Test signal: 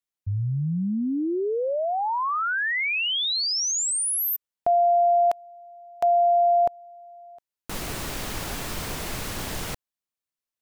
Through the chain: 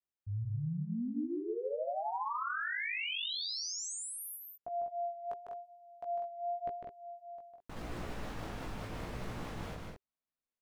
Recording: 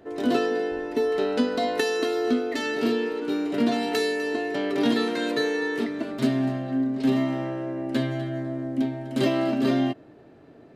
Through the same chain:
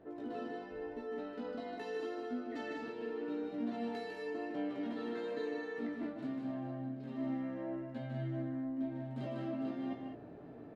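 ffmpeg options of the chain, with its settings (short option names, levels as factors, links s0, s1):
-af "lowpass=f=1200:p=1,bandreject=f=390:w=12,areverse,acompressor=threshold=0.0158:ratio=6:attack=2.4:release=243:detection=rms,areverse,flanger=delay=16.5:depth=2.9:speed=0.87,aecho=1:1:151.6|198.3:0.562|0.501,volume=1.19"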